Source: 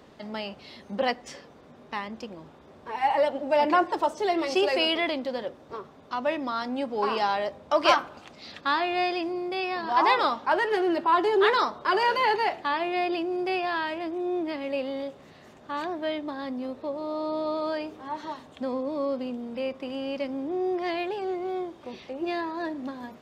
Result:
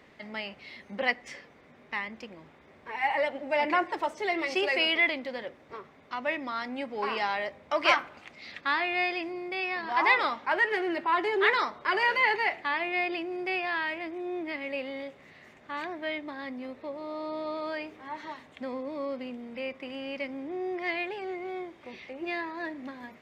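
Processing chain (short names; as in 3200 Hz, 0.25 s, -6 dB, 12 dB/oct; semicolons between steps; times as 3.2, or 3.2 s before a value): bell 2100 Hz +13.5 dB 0.66 oct; gain -6 dB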